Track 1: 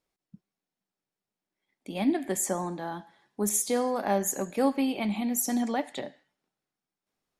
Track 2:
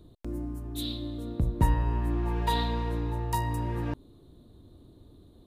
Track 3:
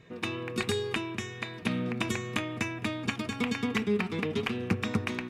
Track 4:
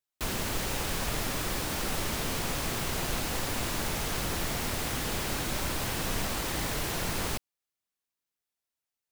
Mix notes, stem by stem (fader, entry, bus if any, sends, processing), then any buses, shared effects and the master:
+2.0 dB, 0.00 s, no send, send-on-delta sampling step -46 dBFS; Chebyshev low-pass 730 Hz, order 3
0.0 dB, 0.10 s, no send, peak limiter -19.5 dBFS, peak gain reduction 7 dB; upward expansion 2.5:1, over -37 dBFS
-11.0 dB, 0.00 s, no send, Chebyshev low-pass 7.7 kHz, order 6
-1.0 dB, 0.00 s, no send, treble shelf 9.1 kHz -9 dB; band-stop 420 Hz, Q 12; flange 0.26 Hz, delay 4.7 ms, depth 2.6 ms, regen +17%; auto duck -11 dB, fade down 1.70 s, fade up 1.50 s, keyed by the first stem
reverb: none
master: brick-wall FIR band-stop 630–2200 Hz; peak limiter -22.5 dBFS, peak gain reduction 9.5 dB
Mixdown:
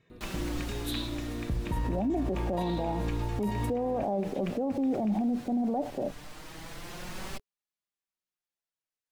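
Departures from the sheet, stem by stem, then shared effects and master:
stem 1 +2.0 dB -> +12.5 dB; stem 2: missing upward expansion 2.5:1, over -37 dBFS; master: missing brick-wall FIR band-stop 630–2200 Hz

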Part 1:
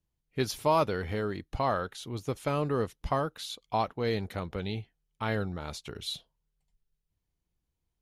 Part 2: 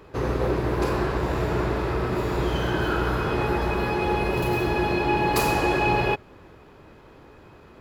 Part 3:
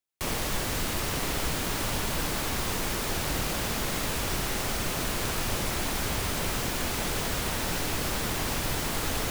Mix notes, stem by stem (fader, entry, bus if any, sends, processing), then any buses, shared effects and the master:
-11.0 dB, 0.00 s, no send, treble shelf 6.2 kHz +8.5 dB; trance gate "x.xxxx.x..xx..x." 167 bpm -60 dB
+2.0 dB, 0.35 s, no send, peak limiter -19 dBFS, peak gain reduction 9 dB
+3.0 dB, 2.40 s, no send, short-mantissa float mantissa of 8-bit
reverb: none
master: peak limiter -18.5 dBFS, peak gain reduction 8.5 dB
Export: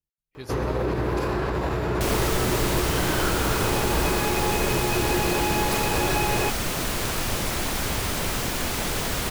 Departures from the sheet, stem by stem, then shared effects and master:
stem 3: entry 2.40 s -> 1.80 s; master: missing peak limiter -18.5 dBFS, peak gain reduction 8.5 dB

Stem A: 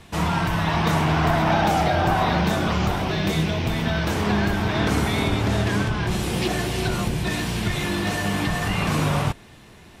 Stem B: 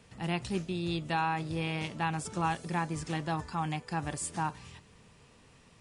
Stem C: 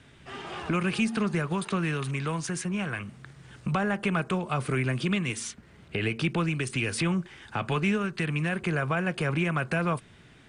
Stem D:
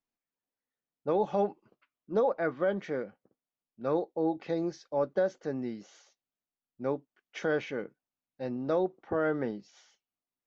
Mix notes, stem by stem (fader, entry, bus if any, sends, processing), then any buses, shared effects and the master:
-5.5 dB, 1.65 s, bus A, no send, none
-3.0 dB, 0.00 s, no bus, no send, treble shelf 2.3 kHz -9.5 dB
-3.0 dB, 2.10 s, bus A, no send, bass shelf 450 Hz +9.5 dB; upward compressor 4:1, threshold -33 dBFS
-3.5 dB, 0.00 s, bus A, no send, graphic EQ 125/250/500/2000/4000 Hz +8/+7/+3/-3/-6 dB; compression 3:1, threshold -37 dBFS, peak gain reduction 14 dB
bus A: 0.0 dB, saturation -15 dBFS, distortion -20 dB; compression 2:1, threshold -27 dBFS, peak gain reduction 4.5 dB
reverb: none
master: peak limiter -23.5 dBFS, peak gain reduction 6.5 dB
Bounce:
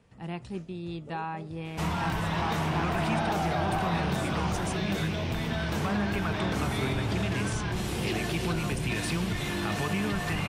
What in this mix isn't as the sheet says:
stem C: missing bass shelf 450 Hz +9.5 dB; stem D -3.5 dB -> -11.5 dB; master: missing peak limiter -23.5 dBFS, peak gain reduction 6.5 dB

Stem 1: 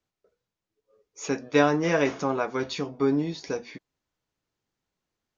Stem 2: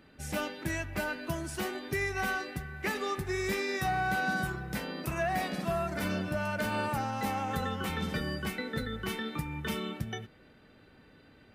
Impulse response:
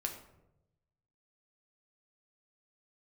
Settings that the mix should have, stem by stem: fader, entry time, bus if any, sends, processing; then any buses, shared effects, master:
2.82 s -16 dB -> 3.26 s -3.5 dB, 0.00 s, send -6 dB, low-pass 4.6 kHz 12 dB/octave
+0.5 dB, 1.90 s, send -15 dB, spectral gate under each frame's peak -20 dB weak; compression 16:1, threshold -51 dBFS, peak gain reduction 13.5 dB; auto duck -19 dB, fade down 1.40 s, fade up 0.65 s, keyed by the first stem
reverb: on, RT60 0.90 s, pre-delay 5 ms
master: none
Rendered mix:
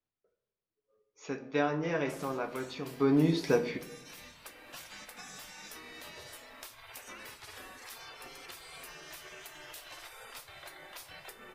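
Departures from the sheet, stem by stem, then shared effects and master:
stem 2: send -15 dB -> -7.5 dB; reverb return +8.5 dB

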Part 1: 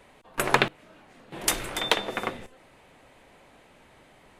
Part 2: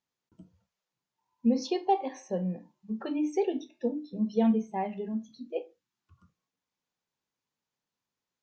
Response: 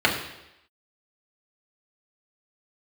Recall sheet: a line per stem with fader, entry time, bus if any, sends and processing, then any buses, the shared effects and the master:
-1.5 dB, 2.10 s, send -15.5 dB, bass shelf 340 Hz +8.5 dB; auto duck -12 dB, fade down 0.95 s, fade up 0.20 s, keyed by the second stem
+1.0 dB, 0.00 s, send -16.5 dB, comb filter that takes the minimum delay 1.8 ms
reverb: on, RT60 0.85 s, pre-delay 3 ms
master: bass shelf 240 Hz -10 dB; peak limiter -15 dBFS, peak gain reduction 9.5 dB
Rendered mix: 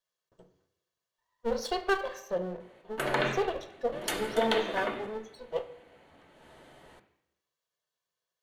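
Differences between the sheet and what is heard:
stem 1: entry 2.10 s -> 2.60 s; reverb return -6.5 dB

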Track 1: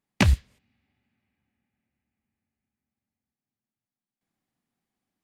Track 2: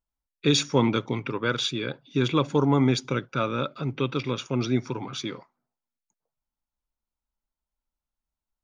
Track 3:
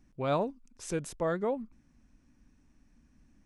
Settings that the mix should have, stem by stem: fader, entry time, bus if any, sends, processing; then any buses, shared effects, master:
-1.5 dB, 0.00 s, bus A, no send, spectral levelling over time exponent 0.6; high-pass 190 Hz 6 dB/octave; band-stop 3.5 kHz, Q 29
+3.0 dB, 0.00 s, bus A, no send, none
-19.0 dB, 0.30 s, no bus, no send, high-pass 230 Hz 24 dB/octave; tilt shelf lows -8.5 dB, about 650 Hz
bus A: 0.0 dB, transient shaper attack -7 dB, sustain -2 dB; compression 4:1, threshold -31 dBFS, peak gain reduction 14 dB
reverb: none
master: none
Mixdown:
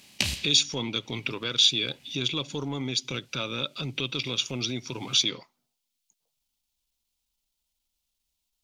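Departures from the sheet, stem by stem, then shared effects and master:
stem 3: muted; master: extra resonant high shelf 2.2 kHz +12 dB, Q 1.5

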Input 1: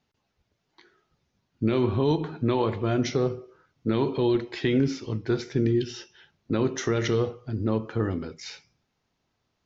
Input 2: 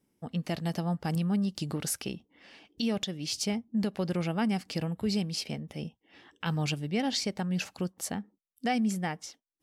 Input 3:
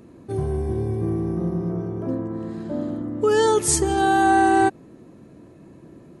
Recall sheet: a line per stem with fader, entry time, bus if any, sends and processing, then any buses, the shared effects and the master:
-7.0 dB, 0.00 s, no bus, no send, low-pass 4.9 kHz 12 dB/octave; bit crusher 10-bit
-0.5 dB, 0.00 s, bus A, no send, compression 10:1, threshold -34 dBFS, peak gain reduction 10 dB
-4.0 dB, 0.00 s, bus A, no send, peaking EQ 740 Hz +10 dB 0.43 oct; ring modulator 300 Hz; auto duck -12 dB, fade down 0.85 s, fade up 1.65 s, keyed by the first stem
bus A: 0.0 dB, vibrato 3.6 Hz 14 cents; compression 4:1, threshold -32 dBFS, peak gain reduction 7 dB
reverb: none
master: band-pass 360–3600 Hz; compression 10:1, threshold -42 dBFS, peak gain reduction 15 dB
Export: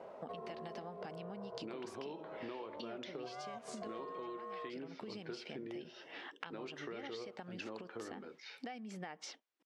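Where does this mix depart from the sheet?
stem 2 -0.5 dB -> +8.0 dB; stem 3 -4.0 dB -> +2.5 dB

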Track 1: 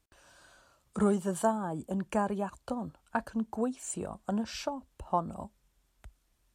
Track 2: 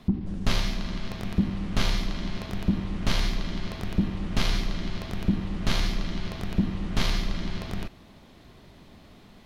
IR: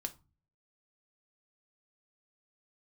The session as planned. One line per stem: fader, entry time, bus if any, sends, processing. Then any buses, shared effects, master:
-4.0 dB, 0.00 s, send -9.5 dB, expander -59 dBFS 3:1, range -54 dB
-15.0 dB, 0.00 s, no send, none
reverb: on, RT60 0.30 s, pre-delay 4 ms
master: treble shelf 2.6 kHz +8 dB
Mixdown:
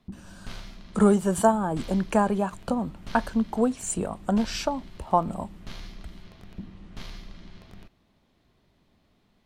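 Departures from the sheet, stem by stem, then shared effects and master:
stem 1 -4.0 dB -> +5.5 dB; master: missing treble shelf 2.6 kHz +8 dB

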